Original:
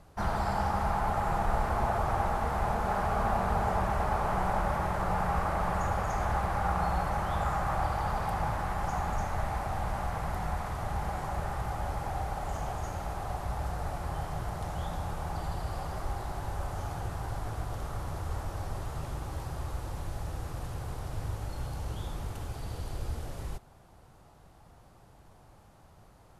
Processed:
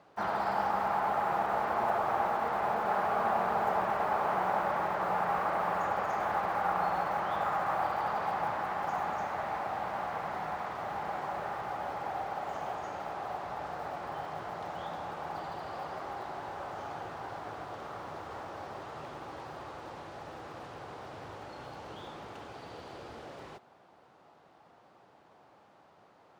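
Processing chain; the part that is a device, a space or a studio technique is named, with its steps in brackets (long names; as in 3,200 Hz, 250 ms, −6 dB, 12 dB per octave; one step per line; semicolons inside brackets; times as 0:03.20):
early digital voice recorder (band-pass filter 290–3,800 Hz; one scale factor per block 7 bits)
level +1 dB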